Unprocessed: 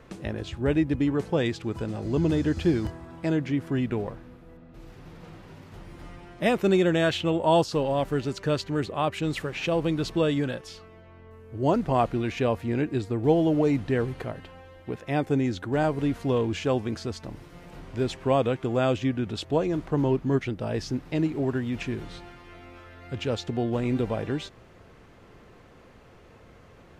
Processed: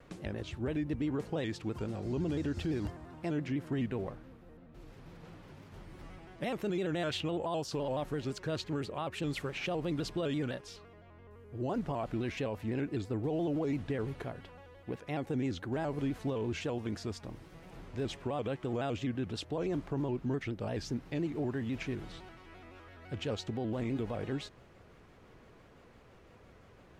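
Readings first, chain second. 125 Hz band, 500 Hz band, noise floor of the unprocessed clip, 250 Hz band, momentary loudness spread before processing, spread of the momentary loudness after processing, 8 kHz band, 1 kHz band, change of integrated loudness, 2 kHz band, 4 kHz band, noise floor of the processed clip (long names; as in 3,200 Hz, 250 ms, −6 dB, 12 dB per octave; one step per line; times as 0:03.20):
−8.5 dB, −10.5 dB, −52 dBFS, −9.0 dB, 19 LU, 18 LU, −6.5 dB, −11.5 dB, −9.5 dB, −9.0 dB, −7.5 dB, −58 dBFS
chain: brickwall limiter −20.5 dBFS, peak gain reduction 11 dB
pitch modulation by a square or saw wave square 5.9 Hz, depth 100 cents
level −6 dB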